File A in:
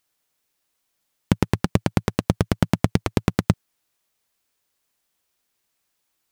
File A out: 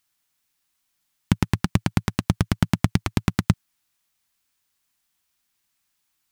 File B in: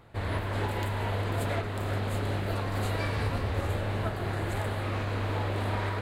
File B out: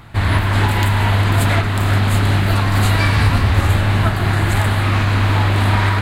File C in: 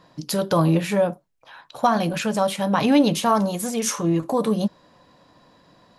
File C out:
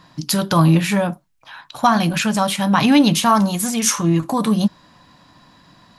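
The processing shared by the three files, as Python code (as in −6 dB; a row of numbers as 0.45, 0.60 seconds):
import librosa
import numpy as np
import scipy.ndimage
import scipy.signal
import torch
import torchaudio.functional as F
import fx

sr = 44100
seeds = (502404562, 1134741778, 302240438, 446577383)

y = fx.peak_eq(x, sr, hz=490.0, db=-12.5, octaves=0.95)
y = librosa.util.normalize(y) * 10.0 ** (-2 / 20.0)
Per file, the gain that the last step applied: +1.0, +17.0, +7.5 decibels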